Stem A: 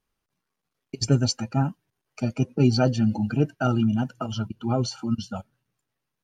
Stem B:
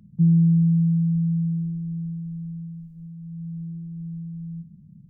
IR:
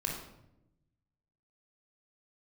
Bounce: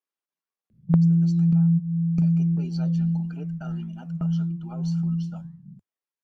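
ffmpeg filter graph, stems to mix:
-filter_complex "[0:a]highpass=350,alimiter=limit=-19dB:level=0:latency=1:release=209,flanger=delay=8.9:depth=6.7:regen=-87:speed=1.8:shape=triangular,volume=-8.5dB,asplit=2[a][b];[1:a]equalizer=f=210:w=0.66:g=11.5,asplit=2[c][d];[d]afreqshift=1.5[e];[c][e]amix=inputs=2:normalize=1,adelay=700,volume=2dB,asplit=2[f][g];[g]volume=-17dB[h];[b]apad=whole_len=255516[i];[f][i]sidechaingate=range=-15dB:threshold=-57dB:ratio=16:detection=peak[j];[2:a]atrim=start_sample=2205[k];[h][k]afir=irnorm=-1:irlink=0[l];[a][j][l]amix=inputs=3:normalize=0,equalizer=f=94:t=o:w=0.39:g=-8,acompressor=threshold=-18dB:ratio=4"

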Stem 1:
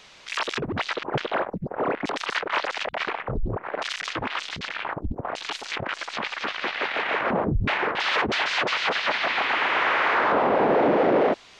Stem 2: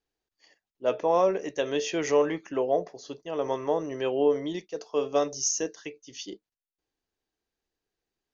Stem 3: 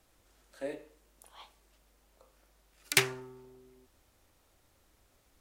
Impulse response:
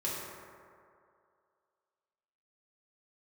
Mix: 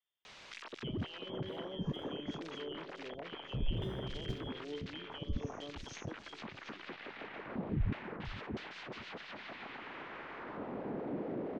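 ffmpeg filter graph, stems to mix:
-filter_complex "[0:a]alimiter=limit=-21.5dB:level=0:latency=1:release=299,acontrast=83,adelay=250,volume=-10.5dB,asplit=2[a][b];[b]volume=-13dB[c];[1:a]volume=-5.5dB,asplit=3[d][e][f];[e]volume=-20dB[g];[f]volume=-9dB[h];[2:a]acrusher=samples=40:mix=1:aa=0.000001,adelay=850,volume=-2.5dB,asplit=3[i][j][k];[j]volume=-10.5dB[l];[k]volume=-7.5dB[m];[d][i]amix=inputs=2:normalize=0,lowpass=f=3.1k:t=q:w=0.5098,lowpass=f=3.1k:t=q:w=0.6013,lowpass=f=3.1k:t=q:w=0.9,lowpass=f=3.1k:t=q:w=2.563,afreqshift=-3600,acompressor=threshold=-31dB:ratio=6,volume=0dB[n];[3:a]atrim=start_sample=2205[o];[g][l]amix=inputs=2:normalize=0[p];[p][o]afir=irnorm=-1:irlink=0[q];[c][h][m]amix=inputs=3:normalize=0,aecho=0:1:469:1[r];[a][n][q][r]amix=inputs=4:normalize=0,highshelf=f=6.4k:g=-6,acrossover=split=320[s][t];[t]acompressor=threshold=-48dB:ratio=5[u];[s][u]amix=inputs=2:normalize=0"

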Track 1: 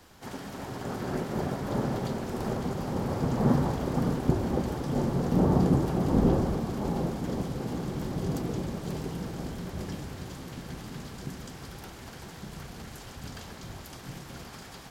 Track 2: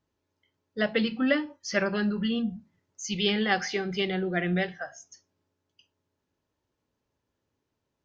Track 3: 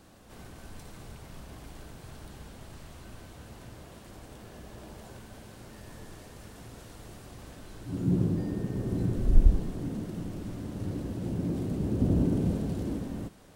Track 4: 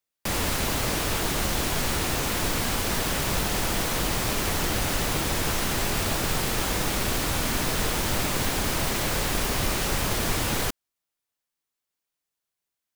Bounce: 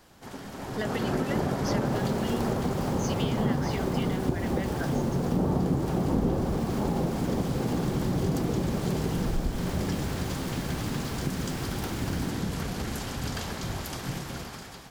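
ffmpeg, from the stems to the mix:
-filter_complex "[0:a]dynaudnorm=f=270:g=7:m=11.5dB,volume=-2.5dB[a];[1:a]acompressor=threshold=-30dB:ratio=6,volume=1dB[b];[2:a]volume=-5.5dB[c];[3:a]adelay=1600,volume=-18.5dB[d];[a][b][c][d]amix=inputs=4:normalize=0,acompressor=threshold=-25dB:ratio=3"

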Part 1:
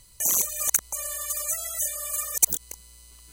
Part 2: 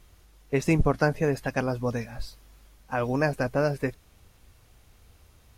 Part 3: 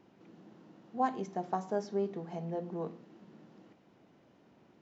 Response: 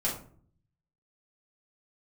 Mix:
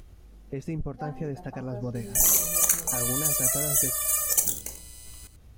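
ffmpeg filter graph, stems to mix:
-filter_complex "[0:a]alimiter=limit=-9dB:level=0:latency=1:release=222,adelay=1950,volume=0dB,asplit=3[a][b][c];[b]volume=-5.5dB[d];[c]volume=-9dB[e];[1:a]lowshelf=f=500:g=11.5,alimiter=limit=-15dB:level=0:latency=1:release=249,volume=-8dB[f];[2:a]volume=-16dB,asplit=2[g][h];[h]volume=-4.5dB[i];[3:a]atrim=start_sample=2205[j];[d][i]amix=inputs=2:normalize=0[k];[k][j]afir=irnorm=-1:irlink=0[l];[e]aecho=0:1:90:1[m];[a][f][g][l][m]amix=inputs=5:normalize=0,bandreject=f=980:w=15,acompressor=mode=upward:threshold=-43dB:ratio=2.5"

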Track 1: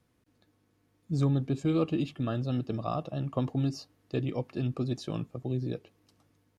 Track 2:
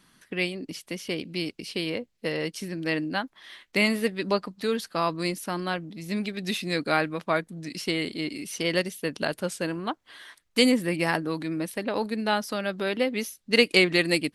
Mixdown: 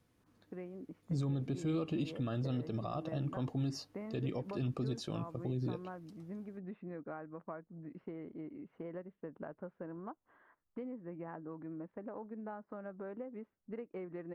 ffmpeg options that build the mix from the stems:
-filter_complex "[0:a]volume=-1.5dB[a];[1:a]lowpass=f=1.3k:w=0.5412,lowpass=f=1.3k:w=1.3066,acompressor=threshold=-31dB:ratio=6,adelay=200,volume=-10.5dB[b];[a][b]amix=inputs=2:normalize=0,alimiter=level_in=3.5dB:limit=-24dB:level=0:latency=1:release=82,volume=-3.5dB"

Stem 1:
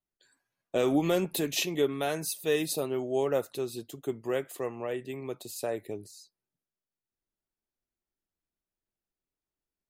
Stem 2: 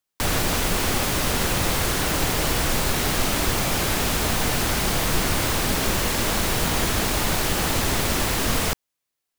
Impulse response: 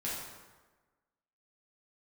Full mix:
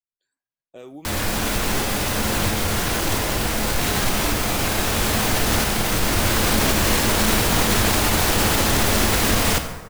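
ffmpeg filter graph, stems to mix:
-filter_complex "[0:a]volume=-14dB,asplit=2[a][b];[1:a]alimiter=limit=-17.5dB:level=0:latency=1,acontrast=56,adelay=850,volume=-0.5dB,asplit=2[c][d];[d]volume=-6.5dB[e];[b]apad=whole_len=451416[f];[c][f]sidechaincompress=threshold=-45dB:ratio=8:attack=16:release=1500[g];[2:a]atrim=start_sample=2205[h];[e][h]afir=irnorm=-1:irlink=0[i];[a][g][i]amix=inputs=3:normalize=0"

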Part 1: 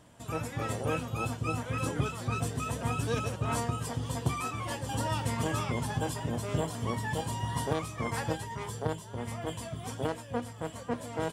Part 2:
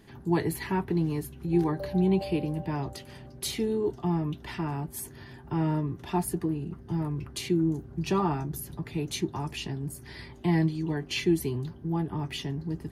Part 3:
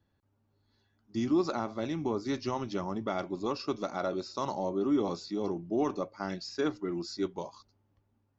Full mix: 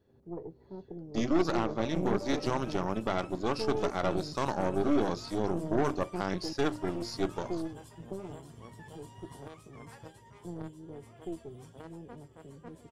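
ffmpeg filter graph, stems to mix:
-filter_complex "[0:a]adelay=1750,volume=-17.5dB[a];[1:a]lowpass=f=520:t=q:w=4.9,volume=-13.5dB,asplit=3[b][c][d];[b]atrim=end=6.53,asetpts=PTS-STARTPTS,afade=t=out:st=6.526:d=0.004:c=hsin[e];[c]atrim=start=6.53:end=7.32,asetpts=PTS-STARTPTS,volume=0[f];[d]atrim=start=7.32,asetpts=PTS-STARTPTS,afade=t=in:d=0.004:c=hsin[g];[e][f][g]concat=n=3:v=0:a=1[h];[2:a]bandreject=f=50:t=h:w=6,bandreject=f=100:t=h:w=6,bandreject=f=150:t=h:w=6,bandreject=f=200:t=h:w=6,bandreject=f=250:t=h:w=6,bandreject=f=300:t=h:w=6,bandreject=f=350:t=h:w=6,volume=0.5dB,asplit=2[i][j];[j]apad=whole_len=569453[k];[h][k]sidechaingate=range=-6dB:threshold=-59dB:ratio=16:detection=peak[l];[a][l][i]amix=inputs=3:normalize=0,aeval=exprs='0.15*(cos(1*acos(clip(val(0)/0.15,-1,1)))-cos(1*PI/2))+0.0237*(cos(6*acos(clip(val(0)/0.15,-1,1)))-cos(6*PI/2))':c=same"

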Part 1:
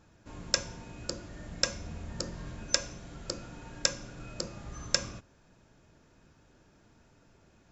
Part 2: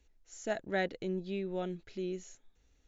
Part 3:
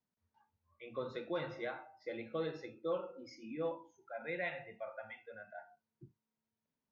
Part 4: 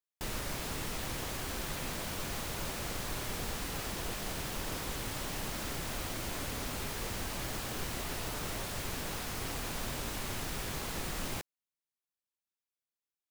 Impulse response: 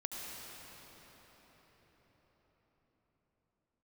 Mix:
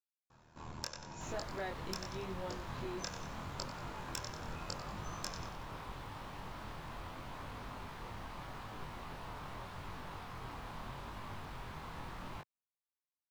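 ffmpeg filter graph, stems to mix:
-filter_complex "[0:a]aeval=exprs='val(0)*sin(2*PI*39*n/s)':c=same,adelay=300,volume=0dB,asplit=2[a][b];[b]volume=-19.5dB[c];[1:a]adelay=850,volume=-1.5dB[d];[3:a]bass=f=250:g=4,treble=f=4k:g=-12,adelay=1000,volume=-9.5dB[e];[a][d]amix=inputs=2:normalize=0,aeval=exprs='0.237*(abs(mod(val(0)/0.237+3,4)-2)-1)':c=same,acompressor=threshold=-38dB:ratio=10,volume=0dB[f];[c]aecho=0:1:93|186|279|372|465|558:1|0.43|0.185|0.0795|0.0342|0.0147[g];[e][f][g]amix=inputs=3:normalize=0,flanger=delay=20:depth=5.8:speed=0.8,equalizer=f=125:t=o:w=1:g=3,equalizer=f=1k:t=o:w=1:g=11,equalizer=f=4k:t=o:w=1:g=4"

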